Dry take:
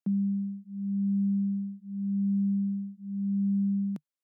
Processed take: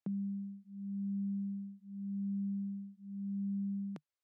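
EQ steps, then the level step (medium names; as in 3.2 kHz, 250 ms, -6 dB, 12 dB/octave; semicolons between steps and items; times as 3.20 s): distance through air 73 m; peaking EQ 210 Hz -11.5 dB; +1.0 dB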